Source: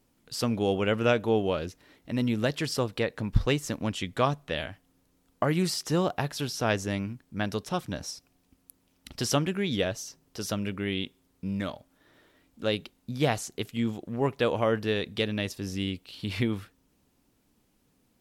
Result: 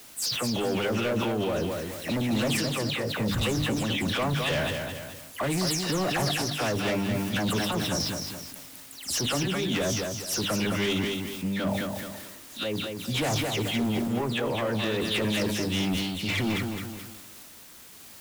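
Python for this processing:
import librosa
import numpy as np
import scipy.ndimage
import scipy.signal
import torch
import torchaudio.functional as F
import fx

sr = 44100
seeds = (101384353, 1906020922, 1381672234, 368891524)

p1 = fx.spec_delay(x, sr, highs='early', ms=159)
p2 = scipy.signal.sosfilt(scipy.signal.butter(2, 83.0, 'highpass', fs=sr, output='sos'), p1)
p3 = fx.hum_notches(p2, sr, base_hz=50, count=6)
p4 = fx.over_compress(p3, sr, threshold_db=-32.0, ratio=-0.5)
p5 = p3 + F.gain(torch.from_numpy(p4), 3.0).numpy()
p6 = fx.quant_dither(p5, sr, seeds[0], bits=8, dither='triangular')
p7 = fx.tremolo_random(p6, sr, seeds[1], hz=3.5, depth_pct=55)
p8 = np.clip(p7, -10.0 ** (-25.5 / 20.0), 10.0 ** (-25.5 / 20.0))
p9 = p8 + fx.echo_feedback(p8, sr, ms=214, feedback_pct=32, wet_db=-6.0, dry=0)
p10 = fx.sustainer(p9, sr, db_per_s=29.0)
y = F.gain(torch.from_numpy(p10), 1.0).numpy()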